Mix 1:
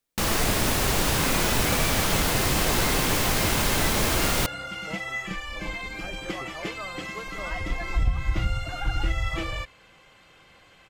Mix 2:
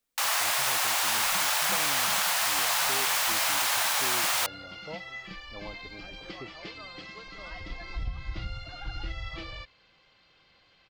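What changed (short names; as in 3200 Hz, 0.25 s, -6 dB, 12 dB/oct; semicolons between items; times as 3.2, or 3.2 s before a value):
first sound: add inverse Chebyshev high-pass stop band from 360 Hz, stop band 40 dB; second sound: add ladder low-pass 5100 Hz, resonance 60%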